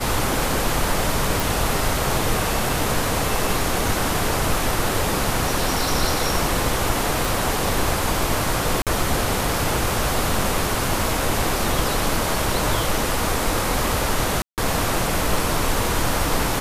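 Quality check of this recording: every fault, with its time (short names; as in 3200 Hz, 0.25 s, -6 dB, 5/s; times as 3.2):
1.4 pop
7.25 pop
8.82–8.87 gap 47 ms
14.42–14.58 gap 0.158 s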